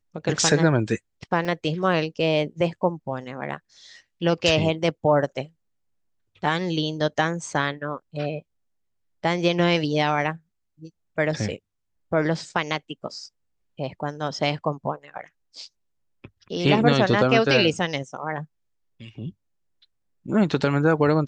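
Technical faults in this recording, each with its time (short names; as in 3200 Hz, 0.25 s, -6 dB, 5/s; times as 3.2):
1.45 gap 2.9 ms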